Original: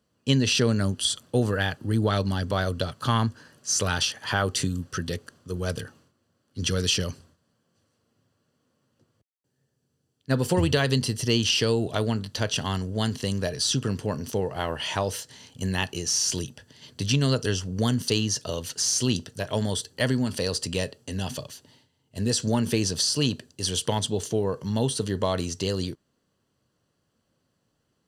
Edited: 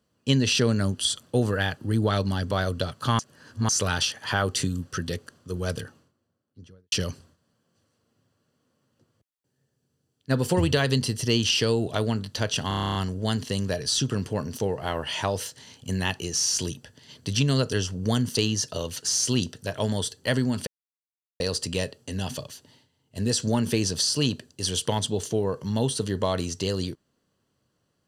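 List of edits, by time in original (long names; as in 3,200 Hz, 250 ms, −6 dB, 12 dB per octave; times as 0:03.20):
0:03.19–0:03.69: reverse
0:05.73–0:06.92: fade out and dull
0:12.68: stutter 0.03 s, 10 plays
0:20.40: splice in silence 0.73 s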